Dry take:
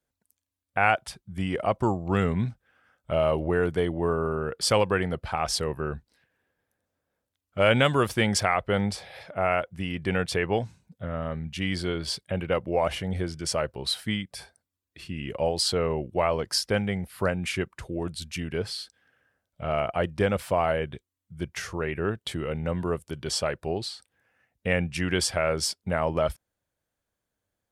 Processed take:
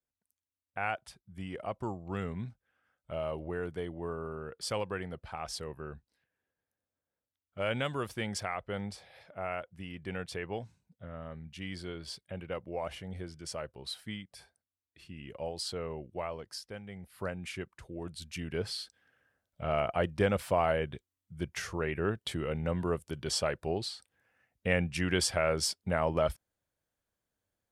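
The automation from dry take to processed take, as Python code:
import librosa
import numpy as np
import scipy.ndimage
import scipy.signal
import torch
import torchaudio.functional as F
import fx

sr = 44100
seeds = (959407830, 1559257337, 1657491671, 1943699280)

y = fx.gain(x, sr, db=fx.line((16.16, -12.0), (16.81, -19.5), (17.16, -11.0), (17.86, -11.0), (18.73, -3.5)))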